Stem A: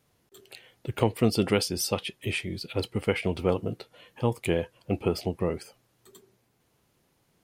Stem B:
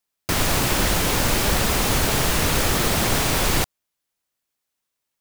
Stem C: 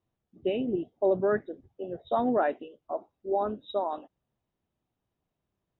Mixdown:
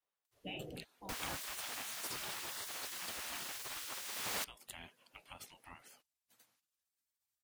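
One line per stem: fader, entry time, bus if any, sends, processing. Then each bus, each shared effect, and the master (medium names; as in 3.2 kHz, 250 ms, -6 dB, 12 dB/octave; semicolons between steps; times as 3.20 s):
-4.0 dB, 0.25 s, no send, high-pass 1 kHz 6 dB/octave; compression, threshold -34 dBFS, peak gain reduction 10 dB
-9.5 dB, 0.80 s, no send, hum 50 Hz, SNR 28 dB; auto duck -11 dB, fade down 1.15 s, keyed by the third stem
0.71 s -3 dB -> 0.92 s -10 dB -> 1.94 s -10 dB -> 2.46 s -17.5 dB, 0.00 s, no send, none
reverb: none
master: spectral gate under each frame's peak -15 dB weak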